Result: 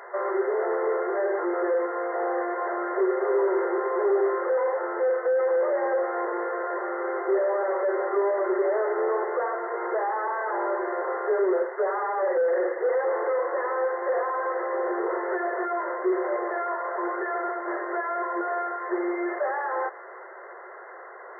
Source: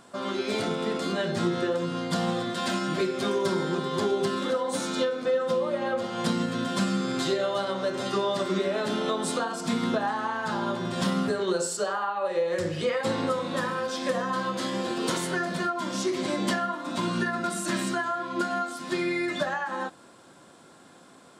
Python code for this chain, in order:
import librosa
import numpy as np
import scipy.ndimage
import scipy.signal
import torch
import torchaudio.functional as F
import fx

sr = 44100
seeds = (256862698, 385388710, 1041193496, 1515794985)

y = fx.delta_mod(x, sr, bps=16000, step_db=-42.5)
y = fx.brickwall_bandpass(y, sr, low_hz=350.0, high_hz=2100.0)
y = y * 10.0 ** (8.0 / 20.0)